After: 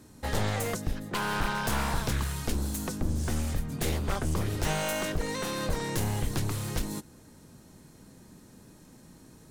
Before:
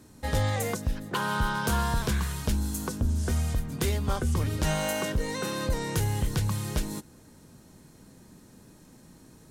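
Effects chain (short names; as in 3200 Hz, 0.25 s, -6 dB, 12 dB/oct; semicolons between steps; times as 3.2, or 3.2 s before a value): one-sided fold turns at -28.5 dBFS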